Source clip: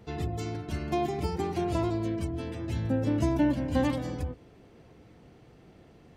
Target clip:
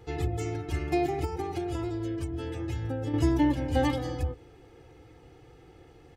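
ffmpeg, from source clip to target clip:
ffmpeg -i in.wav -filter_complex "[0:a]bandreject=frequency=410:width=12,aecho=1:1:2.4:0.85,asettb=1/sr,asplit=3[link_01][link_02][link_03];[link_01]atrim=end=1.244[link_04];[link_02]atrim=start=1.24:end=3.14,asetpts=PTS-STARTPTS,afade=type=in:duration=0.004:curve=qsin,afade=type=out:start_time=1.896:duration=0.004:curve=qsin,acompressor=threshold=-29dB:ratio=6[link_05];[link_03]atrim=start=3.136[link_06];[link_04][link_05]acrossfade=duration=0.004:curve1=hsin:curve2=qsin[link_07];[link_07][link_06]acrossfade=duration=0.004:curve1=qsin:curve2=hsin" out.wav

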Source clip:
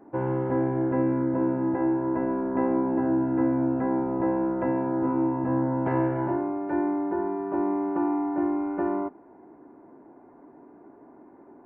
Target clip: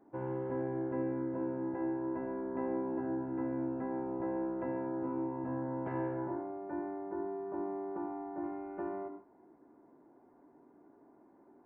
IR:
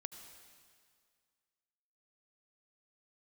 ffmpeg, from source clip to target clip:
-filter_complex "[0:a]asettb=1/sr,asplit=3[link_01][link_02][link_03];[link_01]atrim=end=6.134[link_04];[link_02]atrim=start=6.13:end=8.44,asetpts=PTS-STARTPTS,afade=type=in:duration=0.004:curve=qsin,afade=type=out:start_time=2.306:duration=0.004:curve=qsin,lowpass=1800[link_05];[link_03]atrim=start=8.436[link_06];[link_04][link_05]acrossfade=duration=0.004:curve1=hsin:curve2=qsin[link_07];[link_07][link_06]acrossfade=duration=0.004:curve1=qsin:curve2=hsin[link_08];[1:a]atrim=start_sample=2205,afade=type=out:start_time=0.23:duration=0.01,atrim=end_sample=10584,asetrate=48510,aresample=44100[link_09];[link_08][link_09]afir=irnorm=-1:irlink=0,volume=-6.5dB"

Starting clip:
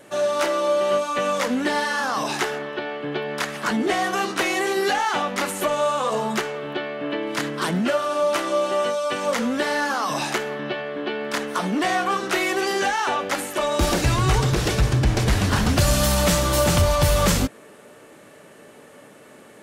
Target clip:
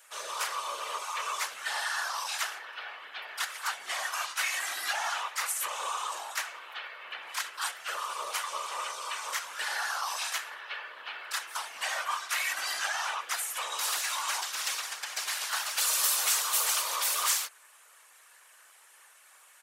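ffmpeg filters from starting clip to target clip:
ffmpeg -i in.wav -filter_complex "[0:a]highpass=frequency=980:width=0.5412,highpass=frequency=980:width=1.3066,asplit=2[link_01][link_02];[link_02]asetrate=37084,aresample=44100,atempo=1.18921,volume=-5dB[link_03];[link_01][link_03]amix=inputs=2:normalize=0,afftfilt=real='hypot(re,im)*cos(2*PI*random(0))':imag='hypot(re,im)*sin(2*PI*random(1))':win_size=512:overlap=0.75,crystalizer=i=1.5:c=0,volume=-3dB" out.wav

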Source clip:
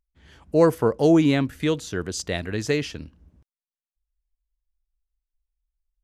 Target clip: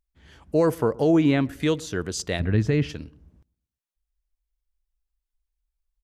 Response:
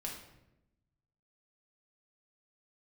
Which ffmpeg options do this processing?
-filter_complex "[0:a]asettb=1/sr,asplit=3[link_01][link_02][link_03];[link_01]atrim=end=0.954[link_04];[link_02]atrim=start=0.95:end=1.45,asetpts=PTS-STARTPTS,afade=type=in:duration=0.004:curve=qsin,afade=type=out:start_time=0.496:duration=0.004:curve=qsin,acrossover=split=3500[link_05][link_06];[link_06]acompressor=threshold=-46dB:ratio=4:attack=1:release=60[link_07];[link_05][link_07]amix=inputs=2:normalize=0[link_08];[link_03]atrim=start=1.446[link_09];[link_04][link_08]acrossfade=duration=0.004:curve1=hsin:curve2=qsin[link_10];[link_10][link_09]acrossfade=duration=0.004:curve1=qsin:curve2=hsin,asplit=3[link_11][link_12][link_13];[link_11]afade=type=out:start_time=2.39:duration=0.02[link_14];[link_12]bass=frequency=250:gain=11,treble=frequency=4000:gain=-14,afade=type=in:start_time=2.39:duration=0.02,afade=type=out:start_time=2.88:duration=0.02[link_15];[link_13]afade=type=in:start_time=2.88:duration=0.02[link_16];[link_14][link_15][link_16]amix=inputs=3:normalize=0,alimiter=limit=-11.5dB:level=0:latency=1:release=77,asplit=2[link_17][link_18];[link_18]adelay=119,lowpass=frequency=870:poles=1,volume=-22dB,asplit=2[link_19][link_20];[link_20]adelay=119,lowpass=frequency=870:poles=1,volume=0.46,asplit=2[link_21][link_22];[link_22]adelay=119,lowpass=frequency=870:poles=1,volume=0.46[link_23];[link_17][link_19][link_21][link_23]amix=inputs=4:normalize=0"

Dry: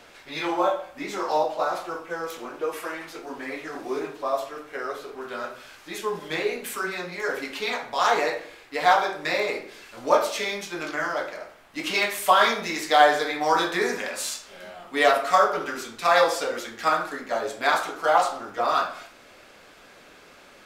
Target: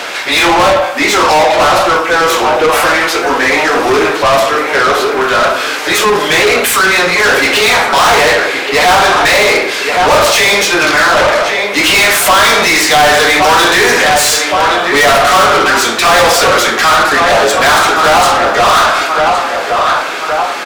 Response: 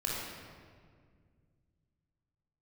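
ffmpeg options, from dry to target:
-filter_complex "[0:a]asplit=2[link_01][link_02];[link_02]adelay=1119,lowpass=frequency=3100:poles=1,volume=-13dB,asplit=2[link_03][link_04];[link_04]adelay=1119,lowpass=frequency=3100:poles=1,volume=0.44,asplit=2[link_05][link_06];[link_06]adelay=1119,lowpass=frequency=3100:poles=1,volume=0.44,asplit=2[link_07][link_08];[link_08]adelay=1119,lowpass=frequency=3100:poles=1,volume=0.44[link_09];[link_01][link_03][link_05][link_07][link_09]amix=inputs=5:normalize=0,asplit=2[link_10][link_11];[link_11]highpass=frequency=720:poles=1,volume=36dB,asoftclip=type=tanh:threshold=-3dB[link_12];[link_10][link_12]amix=inputs=2:normalize=0,lowpass=frequency=7500:poles=1,volume=-6dB,volume=2dB"

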